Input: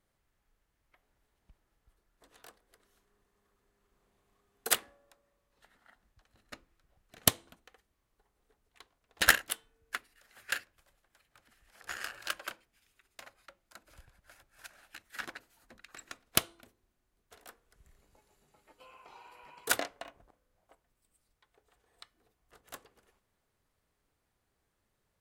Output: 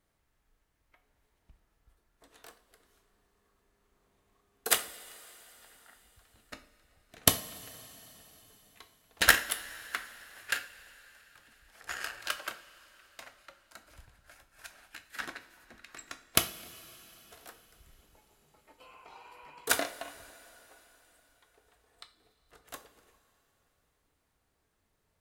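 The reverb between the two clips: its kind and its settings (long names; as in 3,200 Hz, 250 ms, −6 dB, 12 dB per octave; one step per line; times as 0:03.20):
coupled-rooms reverb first 0.35 s, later 4.1 s, from −18 dB, DRR 6.5 dB
level +1.5 dB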